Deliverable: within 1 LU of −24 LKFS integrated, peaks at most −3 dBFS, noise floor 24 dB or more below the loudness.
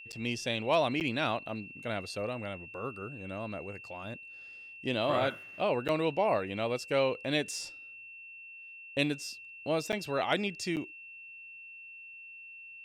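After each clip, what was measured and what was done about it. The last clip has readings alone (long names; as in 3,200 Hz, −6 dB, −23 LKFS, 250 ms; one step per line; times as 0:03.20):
number of dropouts 5; longest dropout 8.4 ms; interfering tone 2,700 Hz; level of the tone −46 dBFS; integrated loudness −33.0 LKFS; sample peak −14.5 dBFS; target loudness −24.0 LKFS
→ repair the gap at 0:00.12/0:01.00/0:05.88/0:09.92/0:10.76, 8.4 ms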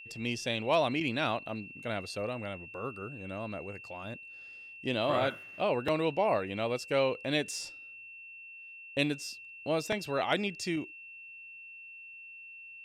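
number of dropouts 0; interfering tone 2,700 Hz; level of the tone −46 dBFS
→ notch filter 2,700 Hz, Q 30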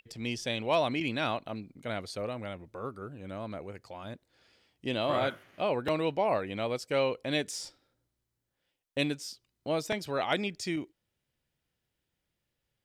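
interfering tone none found; integrated loudness −33.0 LKFS; sample peak −15.0 dBFS; target loudness −24.0 LKFS
→ level +9 dB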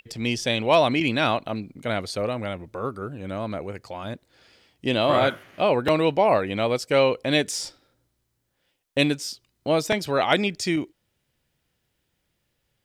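integrated loudness −24.0 LKFS; sample peak −6.0 dBFS; background noise floor −75 dBFS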